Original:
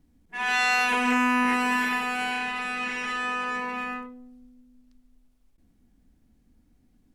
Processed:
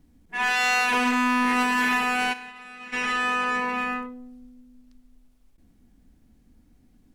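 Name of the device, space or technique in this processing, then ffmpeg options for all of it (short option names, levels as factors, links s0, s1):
limiter into clipper: -filter_complex "[0:a]alimiter=limit=0.133:level=0:latency=1,asoftclip=type=hard:threshold=0.075,asplit=3[s0][s1][s2];[s0]afade=t=out:st=2.32:d=0.02[s3];[s1]agate=range=0.0224:threshold=0.112:ratio=3:detection=peak,afade=t=in:st=2.32:d=0.02,afade=t=out:st=2.92:d=0.02[s4];[s2]afade=t=in:st=2.92:d=0.02[s5];[s3][s4][s5]amix=inputs=3:normalize=0,volume=1.68"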